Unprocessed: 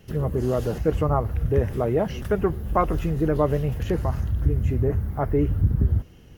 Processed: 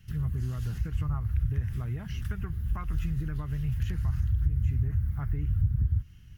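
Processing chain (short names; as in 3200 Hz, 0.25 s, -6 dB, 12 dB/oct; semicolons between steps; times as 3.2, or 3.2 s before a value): compressor, threshold -21 dBFS, peak gain reduction 7.5 dB; EQ curve 120 Hz 0 dB, 540 Hz -29 dB, 1500 Hz -6 dB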